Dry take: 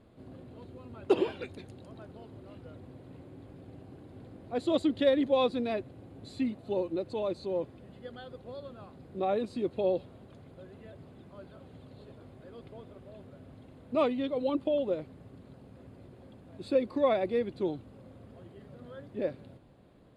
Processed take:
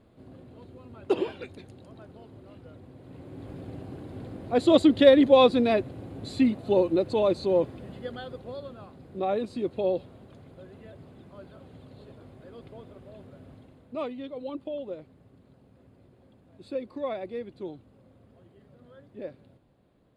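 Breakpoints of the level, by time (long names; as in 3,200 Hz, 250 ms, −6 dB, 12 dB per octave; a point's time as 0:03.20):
0:02.94 0 dB
0:03.51 +9 dB
0:07.88 +9 dB
0:08.93 +2 dB
0:13.52 +2 dB
0:13.98 −6 dB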